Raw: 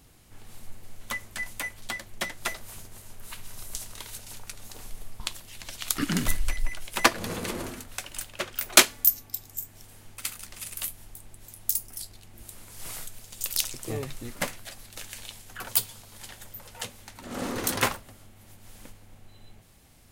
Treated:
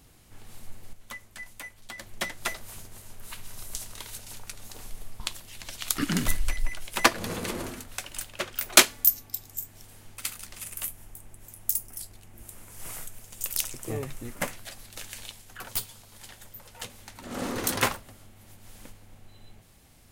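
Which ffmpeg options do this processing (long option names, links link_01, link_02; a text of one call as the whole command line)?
ffmpeg -i in.wav -filter_complex "[0:a]asettb=1/sr,asplit=3[link_01][link_02][link_03];[link_01]atrim=end=10.624[link_04];[link_02]atrim=start=10.62:end=14.51,asetpts=PTS-STARTPTS,afade=type=in:duration=0.004:curve=qsin,afade=type=out:start_time=3.886:duration=0.004:curve=qsin,equalizer=frequency=4200:width=1.6:gain=-7[link_05];[link_03]atrim=start=14.506[link_06];[link_04][link_05]acrossfade=duration=0.004:curve1=hsin:curve2=qsin[link_07];[link_07][link_06]acrossfade=duration=0.004:curve1=qsin:curve2=hsin,asettb=1/sr,asplit=3[link_08][link_09][link_10];[link_08]atrim=end=15.314[link_11];[link_09]atrim=start=15.31:end=16.9,asetpts=PTS-STARTPTS,afade=type=in:duration=0.004:curve=qsin,afade=type=out:start_time=1.586:duration=0.004:curve=qsin,aeval=exprs='(tanh(12.6*val(0)+0.6)-tanh(0.6))/12.6':channel_layout=same[link_12];[link_10]atrim=start=16.896[link_13];[link_11][link_12]acrossfade=duration=0.004:curve1=hsin:curve2=qsin[link_14];[link_14][link_13]acrossfade=duration=0.004:curve1=qsin:curve2=hsin,asplit=3[link_15][link_16][link_17];[link_15]atrim=end=0.932[link_18];[link_16]atrim=start=0.928:end=1.982,asetpts=PTS-STARTPTS,volume=-8dB[link_19];[link_17]atrim=start=1.978[link_20];[link_18][link_19]acrossfade=duration=0.004:curve1=hsin:curve2=hsin[link_21];[link_21][link_20]acrossfade=duration=0.004:curve1=hsin:curve2=hsin" out.wav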